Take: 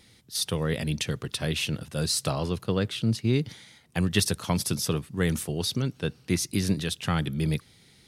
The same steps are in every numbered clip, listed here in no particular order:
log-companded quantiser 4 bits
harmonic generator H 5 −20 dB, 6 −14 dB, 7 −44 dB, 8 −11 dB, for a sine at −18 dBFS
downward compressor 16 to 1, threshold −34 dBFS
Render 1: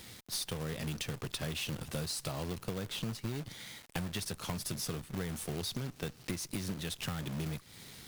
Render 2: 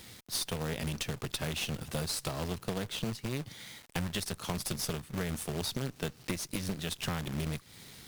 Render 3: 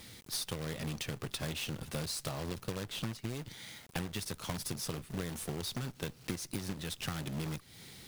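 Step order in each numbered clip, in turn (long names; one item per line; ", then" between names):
log-companded quantiser, then harmonic generator, then downward compressor
log-companded quantiser, then downward compressor, then harmonic generator
harmonic generator, then log-companded quantiser, then downward compressor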